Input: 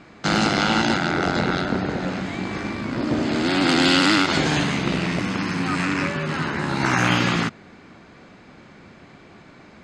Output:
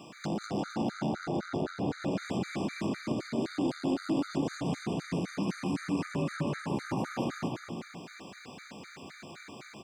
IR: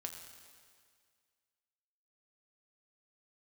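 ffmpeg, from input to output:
-filter_complex "[0:a]highpass=110,aemphasis=mode=production:type=75fm,bandreject=f=60:t=h:w=6,bandreject=f=120:t=h:w=6,bandreject=f=180:t=h:w=6,bandreject=f=240:t=h:w=6,bandreject=f=300:t=h:w=6,acrossover=split=840[s0][s1];[s1]acompressor=threshold=0.0112:ratio=6[s2];[s0][s2]amix=inputs=2:normalize=0,alimiter=limit=0.0708:level=0:latency=1:release=185,volume=17.8,asoftclip=hard,volume=0.0562,asplit=2[s3][s4];[s4]aecho=0:1:200|350|462.5|546.9|610.2:0.631|0.398|0.251|0.158|0.1[s5];[s3][s5]amix=inputs=2:normalize=0,afftfilt=real='re*gt(sin(2*PI*3.9*pts/sr)*(1-2*mod(floor(b*sr/1024/1200),2)),0)':imag='im*gt(sin(2*PI*3.9*pts/sr)*(1-2*mod(floor(b*sr/1024/1200),2)),0)':win_size=1024:overlap=0.75"

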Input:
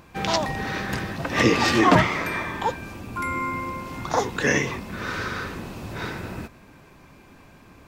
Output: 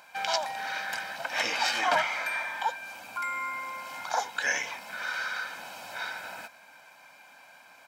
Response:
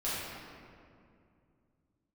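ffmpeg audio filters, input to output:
-filter_complex "[0:a]highpass=750,aecho=1:1:1.3:0.75,asplit=2[s0][s1];[s1]acompressor=threshold=0.0158:ratio=6,volume=1.12[s2];[s0][s2]amix=inputs=2:normalize=0,volume=0.447"

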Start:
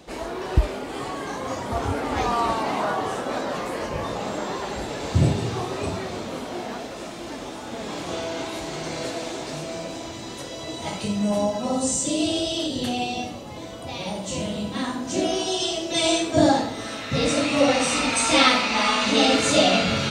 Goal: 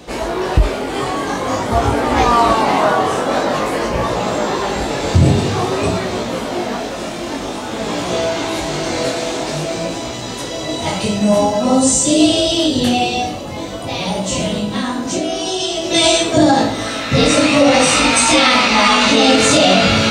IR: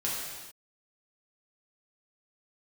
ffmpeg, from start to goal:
-filter_complex "[0:a]asettb=1/sr,asplit=3[s0][s1][s2];[s0]atrim=end=14.584[s3];[s1]atrim=start=14.58:end=15.84,asetpts=PTS-STARTPTS,afade=t=in:d=0.004:c=qsin,afade=t=out:st=1.256:d=0.004:c=qsin,acompressor=threshold=0.0447:ratio=6[s4];[s2]atrim=start=15.836[s5];[s3][s4]acrossfade=d=0.004:c1=hsin:c2=qsin[s6];[s6][s5]acrossfade=d=0.004:c1=qsin:c2=hsin,flanger=delay=16.5:depth=6.3:speed=0.49,alimiter=level_in=5.31:limit=0.891:release=50:level=0:latency=1,volume=0.891"

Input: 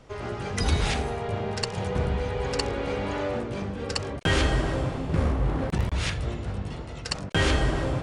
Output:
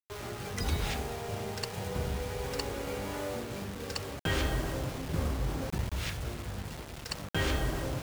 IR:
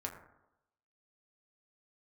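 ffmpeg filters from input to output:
-af "acrusher=bits=5:mix=0:aa=0.000001,volume=0.422"

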